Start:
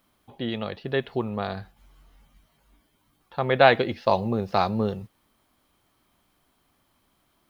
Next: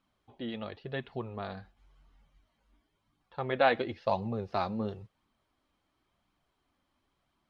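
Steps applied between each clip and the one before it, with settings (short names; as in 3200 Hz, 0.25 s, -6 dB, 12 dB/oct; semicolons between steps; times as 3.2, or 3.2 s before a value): flange 0.95 Hz, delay 0.7 ms, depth 3.4 ms, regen -41%; air absorption 68 m; gain -4.5 dB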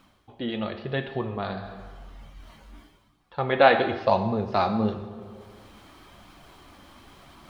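plate-style reverb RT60 1.1 s, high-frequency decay 0.8×, DRR 6.5 dB; reverse; upward compressor, threshold -41 dBFS; reverse; gain +7.5 dB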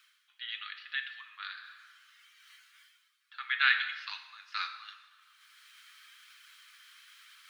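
steep high-pass 1400 Hz 48 dB/oct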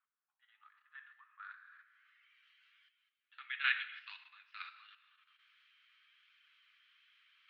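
low-pass sweep 780 Hz -> 2800 Hz, 0.45–2.53; level quantiser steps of 10 dB; flange 1.4 Hz, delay 3.4 ms, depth 9 ms, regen -61%; gain -5.5 dB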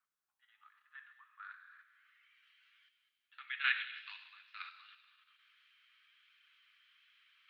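thin delay 96 ms, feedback 69%, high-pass 3800 Hz, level -8 dB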